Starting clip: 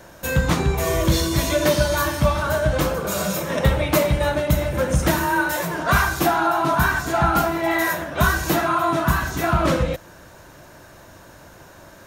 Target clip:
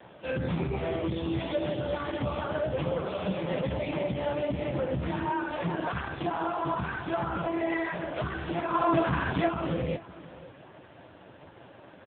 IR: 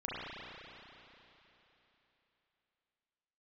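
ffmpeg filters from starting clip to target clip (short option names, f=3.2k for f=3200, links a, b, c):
-filter_complex "[0:a]acrossover=split=170[a][b];[b]acompressor=threshold=-23dB:ratio=6[c];[a][c]amix=inputs=2:normalize=0,alimiter=limit=-17.5dB:level=0:latency=1:release=13,asplit=3[d][e][f];[d]afade=t=out:st=0.85:d=0.02[g];[e]acrusher=bits=5:mode=log:mix=0:aa=0.000001,afade=t=in:st=0.85:d=0.02,afade=t=out:st=1.56:d=0.02[h];[f]afade=t=in:st=1.56:d=0.02[i];[g][h][i]amix=inputs=3:normalize=0,equalizer=f=2.9k:w=7.7:g=2.5,asettb=1/sr,asplit=3[j][k][l];[j]atrim=end=5.744[m];[k]atrim=start=5.74:end=6.36,asetpts=PTS-STARTPTS,afade=t=in:d=0.004:c=qsin,afade=t=out:st=0.616:d=0.004:c=qsin,aeval=exprs='sgn(val(0))*max(abs(val(0))-0.00188,0)':c=same[n];[l]atrim=start=6.356[o];[m][n]acrossfade=d=0.004:c1=hsin:c2=qsin[p];[p][o]acrossfade=d=0.004:c1=qsin:c2=hsin,equalizer=f=1.4k:w=2:g=-5,bandreject=f=50:t=h:w=6,bandreject=f=100:t=h:w=6,bandreject=f=150:t=h:w=6,bandreject=f=200:t=h:w=6,bandreject=f=250:t=h:w=6,bandreject=f=300:t=h:w=6,bandreject=f=350:t=h:w=6,bandreject=f=400:t=h:w=6,bandreject=f=450:t=h:w=6,aecho=1:1:533:0.133,asplit=3[q][r][s];[q]afade=t=out:st=8.73:d=0.02[t];[r]acontrast=43,afade=t=in:st=8.73:d=0.02,afade=t=out:st=9.47:d=0.02[u];[s]afade=t=in:st=9.47:d=0.02[v];[t][u][v]amix=inputs=3:normalize=0" -ar 8000 -c:a libopencore_amrnb -b:a 5150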